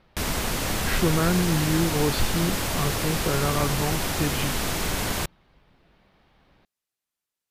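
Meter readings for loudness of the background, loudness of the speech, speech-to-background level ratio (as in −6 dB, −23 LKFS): −26.5 LKFS, −27.0 LKFS, −0.5 dB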